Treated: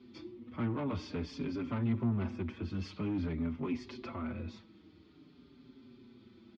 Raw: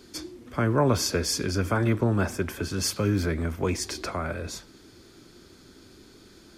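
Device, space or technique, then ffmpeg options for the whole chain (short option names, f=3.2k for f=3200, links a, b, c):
barber-pole flanger into a guitar amplifier: -filter_complex "[0:a]asplit=2[a][b];[b]adelay=5.5,afreqshift=-0.49[c];[a][c]amix=inputs=2:normalize=1,asoftclip=type=tanh:threshold=-25.5dB,highpass=75,equalizer=f=90:t=q:w=4:g=3,equalizer=f=130:t=q:w=4:g=4,equalizer=f=240:t=q:w=4:g=10,equalizer=f=480:t=q:w=4:g=-5,equalizer=f=680:t=q:w=4:g=-6,equalizer=f=1.6k:t=q:w=4:g=-10,lowpass=f=3.5k:w=0.5412,lowpass=f=3.5k:w=1.3066,volume=-5dB"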